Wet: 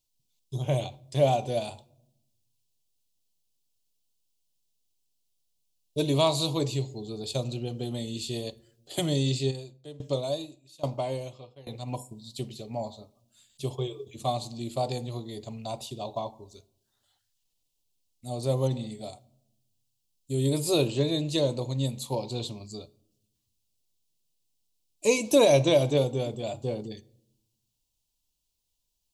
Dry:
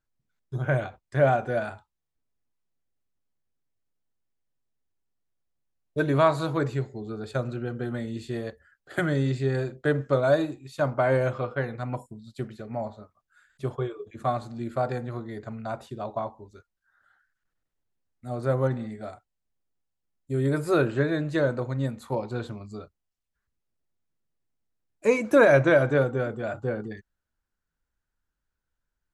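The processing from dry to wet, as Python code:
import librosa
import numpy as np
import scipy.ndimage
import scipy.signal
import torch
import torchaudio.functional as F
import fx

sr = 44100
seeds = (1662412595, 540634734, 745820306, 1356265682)

y = fx.curve_eq(x, sr, hz=(990.0, 1500.0, 2800.0, 4200.0), db=(0, -23, 11, 15))
y = fx.room_shoebox(y, sr, seeds[0], volume_m3=2300.0, walls='furnished', distance_m=0.33)
y = fx.tremolo_decay(y, sr, direction='decaying', hz=1.2, depth_db=21, at=(9.5, 11.86), fade=0.02)
y = F.gain(torch.from_numpy(y), -2.0).numpy()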